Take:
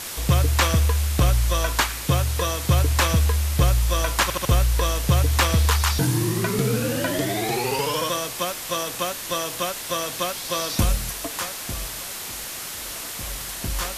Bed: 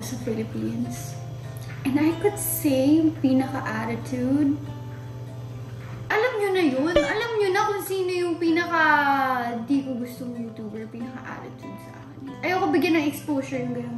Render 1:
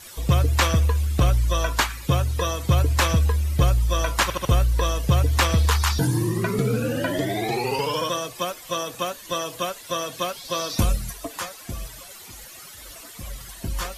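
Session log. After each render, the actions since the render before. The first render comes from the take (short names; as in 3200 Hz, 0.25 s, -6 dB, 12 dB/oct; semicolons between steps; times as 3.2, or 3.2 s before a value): denoiser 14 dB, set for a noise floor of -33 dBFS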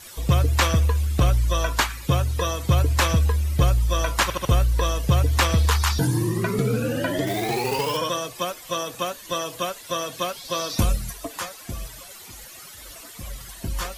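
7.27–7.97 companded quantiser 4-bit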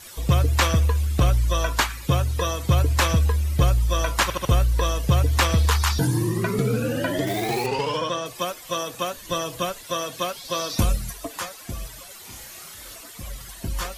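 7.66–8.26 air absorption 79 m; 9.13–9.84 low shelf 150 Hz +11 dB; 12.22–12.96 flutter echo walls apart 5.3 m, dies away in 0.36 s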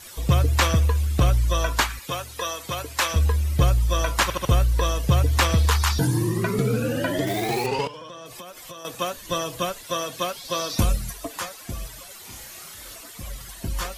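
1.99–3.16 HPF 770 Hz 6 dB/oct; 7.87–8.85 compressor 16:1, threshold -35 dBFS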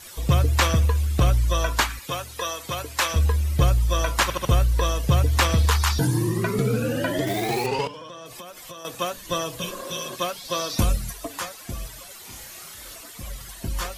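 9.63–10.13 spectral repair 230–2200 Hz before; de-hum 93.71 Hz, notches 3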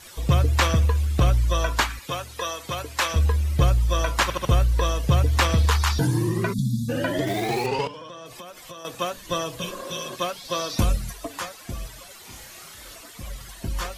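6.53–6.89 spectral delete 270–3300 Hz; high shelf 8100 Hz -6.5 dB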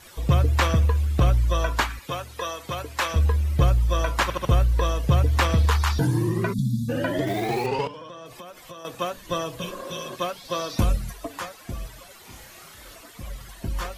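bell 6900 Hz -5 dB 2.5 oct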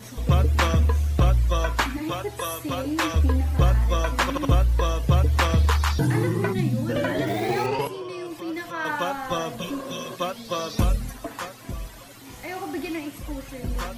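add bed -10 dB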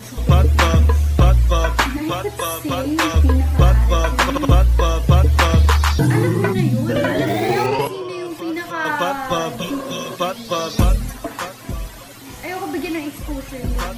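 gain +6.5 dB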